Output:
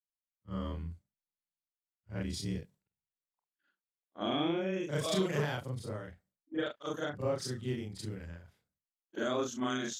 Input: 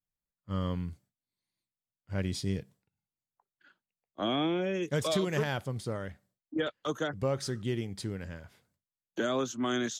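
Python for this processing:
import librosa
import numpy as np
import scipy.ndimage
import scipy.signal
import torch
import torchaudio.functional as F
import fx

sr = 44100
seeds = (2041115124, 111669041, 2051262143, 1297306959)

y = fx.frame_reverse(x, sr, frame_ms=95.0)
y = fx.band_widen(y, sr, depth_pct=40)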